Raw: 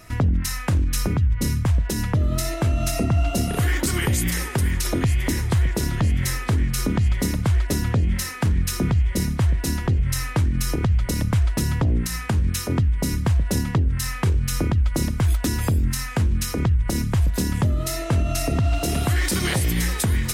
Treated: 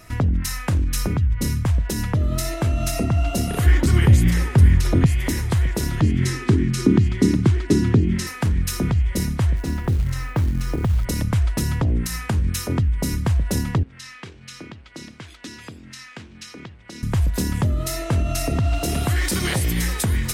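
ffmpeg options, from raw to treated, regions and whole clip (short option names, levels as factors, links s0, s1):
-filter_complex "[0:a]asettb=1/sr,asplit=3[s0][s1][s2];[s0]atrim=end=3.664[s3];[s1]atrim=start=3.66:end=5.06,asetpts=PTS-STARTPTS,afade=t=in:d=0.004:c=qsin,afade=t=out:st=1.396:d=0.004:c=qsin,lowpass=f=3900:p=1,equalizer=f=92:w=0.53:g=10.5[s4];[s2]atrim=start=5.056[s5];[s3][s4]acrossfade=d=0.004:c1=hsin:c2=qsin[s6];[s6][s5]acrossfade=d=0.004:c1=qsin:c2=hsin,asettb=1/sr,asplit=3[s7][s8][s9];[s7]atrim=end=6.024[s10];[s8]atrim=start=6.02:end=8.27,asetpts=PTS-STARTPTS,afade=t=in:d=0.004:c=qsin,afade=t=out:st=2.246:d=0.004:c=qsin,highpass=110,lowpass=7900,lowshelf=f=450:t=q:w=3:g=6.5[s11];[s9]atrim=start=8.266[s12];[s10][s11]acrossfade=d=0.004:c1=hsin:c2=qsin[s13];[s13][s12]acrossfade=d=0.004:c1=qsin:c2=hsin,asettb=1/sr,asplit=3[s14][s15][s16];[s14]atrim=end=9.564[s17];[s15]atrim=start=9.56:end=11.05,asetpts=PTS-STARTPTS,afade=t=in:d=0.004:c=qsin,afade=t=out:st=1.486:d=0.004:c=qsin,lowpass=f=1900:p=1,acrusher=bits=7:mode=log:mix=0:aa=0.000001[s18];[s16]atrim=start=11.046[s19];[s17][s18]acrossfade=d=0.004:c1=hsin:c2=qsin[s20];[s20][s19]acrossfade=d=0.004:c1=qsin:c2=hsin,asettb=1/sr,asplit=3[s21][s22][s23];[s21]atrim=end=13.834[s24];[s22]atrim=start=13.83:end=17.03,asetpts=PTS-STARTPTS,afade=t=in:d=0.004:c=qsin,afade=t=out:st=3.196:d=0.004:c=qsin,equalizer=f=680:w=0.47:g=-14.5,aeval=exprs='sgn(val(0))*max(abs(val(0))-0.00299,0)':c=same,highpass=330,lowpass=4000[s25];[s23]atrim=start=17.026[s26];[s24][s25]acrossfade=d=0.004:c1=hsin:c2=qsin[s27];[s27][s26]acrossfade=d=0.004:c1=qsin:c2=hsin"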